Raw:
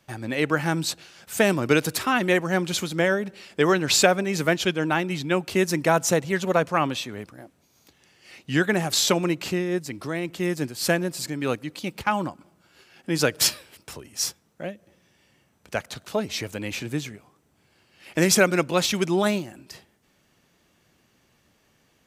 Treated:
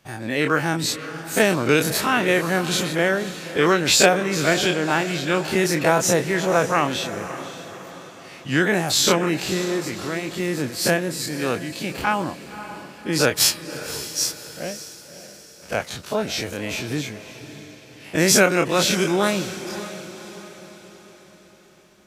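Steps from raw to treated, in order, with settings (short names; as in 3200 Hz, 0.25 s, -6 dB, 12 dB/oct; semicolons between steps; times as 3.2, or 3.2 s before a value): spectral dilation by 60 ms; on a send: diffused feedback echo 0.565 s, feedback 47%, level -12.5 dB; on the sum: gain -1 dB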